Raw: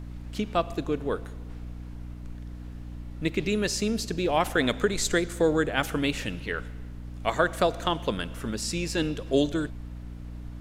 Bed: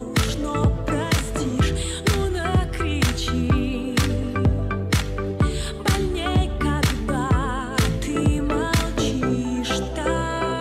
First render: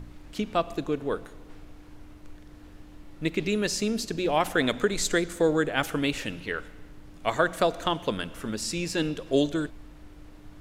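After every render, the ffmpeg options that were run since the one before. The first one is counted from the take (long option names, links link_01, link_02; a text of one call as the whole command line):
ffmpeg -i in.wav -af "bandreject=frequency=60:width_type=h:width=4,bandreject=frequency=120:width_type=h:width=4,bandreject=frequency=180:width_type=h:width=4,bandreject=frequency=240:width_type=h:width=4" out.wav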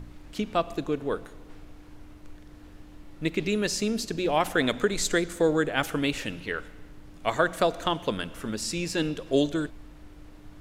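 ffmpeg -i in.wav -af anull out.wav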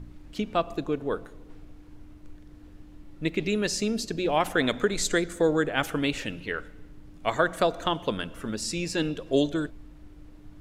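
ffmpeg -i in.wav -af "afftdn=noise_reduction=6:noise_floor=-48" out.wav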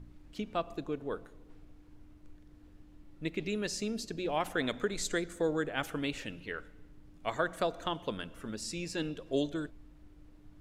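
ffmpeg -i in.wav -af "volume=-8dB" out.wav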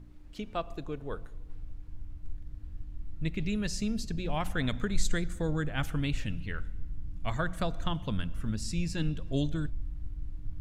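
ffmpeg -i in.wav -af "asubboost=boost=12:cutoff=120" out.wav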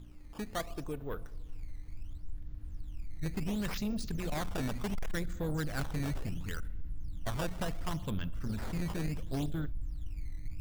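ffmpeg -i in.wav -af "aresample=16000,asoftclip=type=tanh:threshold=-28.5dB,aresample=44100,acrusher=samples=12:mix=1:aa=0.000001:lfo=1:lforange=19.2:lforate=0.7" out.wav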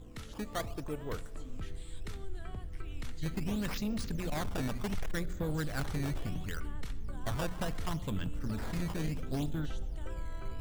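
ffmpeg -i in.wav -i bed.wav -filter_complex "[1:a]volume=-26dB[link_01];[0:a][link_01]amix=inputs=2:normalize=0" out.wav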